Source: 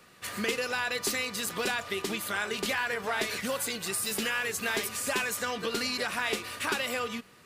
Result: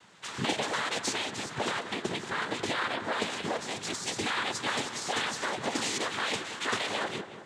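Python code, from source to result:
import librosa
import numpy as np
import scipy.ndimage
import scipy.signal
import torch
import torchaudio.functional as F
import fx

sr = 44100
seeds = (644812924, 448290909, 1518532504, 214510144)

y = fx.high_shelf(x, sr, hz=4900.0, db=-7.5, at=(1.12, 3.75))
y = fx.noise_vocoder(y, sr, seeds[0], bands=6)
y = fx.echo_filtered(y, sr, ms=183, feedback_pct=59, hz=2500.0, wet_db=-11.0)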